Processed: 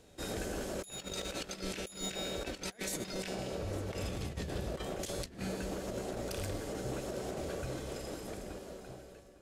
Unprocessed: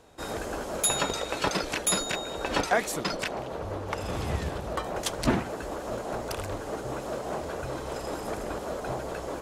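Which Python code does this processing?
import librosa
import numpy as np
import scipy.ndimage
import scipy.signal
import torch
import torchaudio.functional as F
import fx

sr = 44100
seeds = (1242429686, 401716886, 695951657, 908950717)

y = fx.fade_out_tail(x, sr, length_s=2.05)
y = fx.comb_fb(y, sr, f0_hz=190.0, decay_s=1.7, harmonics='all', damping=0.0, mix_pct=80)
y = fx.over_compress(y, sr, threshold_db=-46.0, ratio=-0.5)
y = fx.peak_eq(y, sr, hz=1000.0, db=-11.5, octaves=1.3)
y = y + 10.0 ** (-17.0 / 20.0) * np.pad(y, (int(853 * sr / 1000.0), 0))[:len(y)]
y = y * 10.0 ** (10.0 / 20.0)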